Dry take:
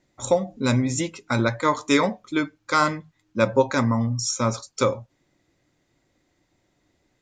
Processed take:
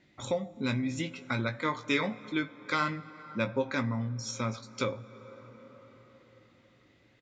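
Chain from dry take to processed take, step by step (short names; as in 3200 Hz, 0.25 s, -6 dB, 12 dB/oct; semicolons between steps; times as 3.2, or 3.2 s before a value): tone controls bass +10 dB, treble -15 dB; doubler 19 ms -9.5 dB; plate-style reverb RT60 4 s, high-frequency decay 0.5×, DRR 19 dB; compressor 1.5:1, threshold -49 dBFS, peak gain reduction 14 dB; weighting filter D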